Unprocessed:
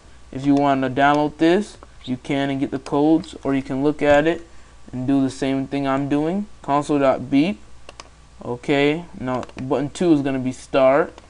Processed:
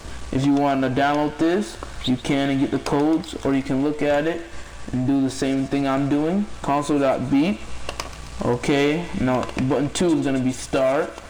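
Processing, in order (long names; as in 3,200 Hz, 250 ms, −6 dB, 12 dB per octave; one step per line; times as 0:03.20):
downward compressor 3 to 1, threshold −28 dBFS, peak gain reduction 13 dB
hum removal 112.8 Hz, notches 29
speech leveller within 4 dB 2 s
leveller curve on the samples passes 2
delay with a high-pass on its return 134 ms, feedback 80%, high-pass 1,400 Hz, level −15 dB
level +2.5 dB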